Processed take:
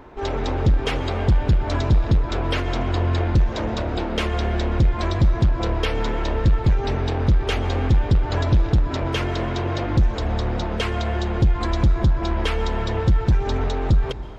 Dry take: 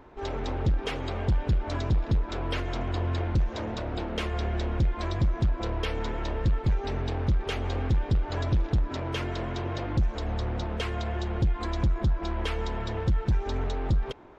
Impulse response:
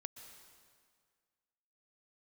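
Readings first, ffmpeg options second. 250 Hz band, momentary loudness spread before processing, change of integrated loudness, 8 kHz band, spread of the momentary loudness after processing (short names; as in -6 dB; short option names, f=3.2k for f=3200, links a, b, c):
+7.5 dB, 5 LU, +7.5 dB, n/a, 5 LU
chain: -filter_complex "[0:a]asplit=2[a][b];[1:a]atrim=start_sample=2205[c];[b][c]afir=irnorm=-1:irlink=0,volume=0.5dB[d];[a][d]amix=inputs=2:normalize=0,volume=3.5dB"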